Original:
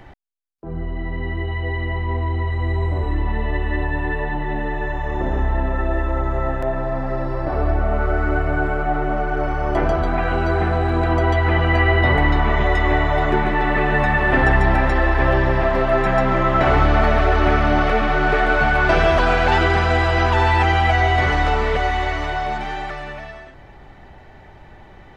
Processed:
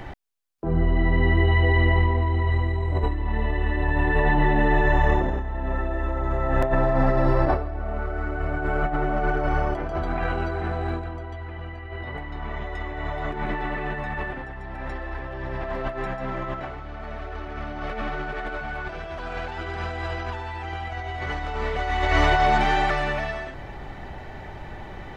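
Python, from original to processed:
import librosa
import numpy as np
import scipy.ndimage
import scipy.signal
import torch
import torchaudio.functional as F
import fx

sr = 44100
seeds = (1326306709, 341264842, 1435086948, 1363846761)

y = fx.low_shelf(x, sr, hz=180.0, db=3.5, at=(10.99, 11.91))
y = fx.over_compress(y, sr, threshold_db=-23.0, ratio=-0.5)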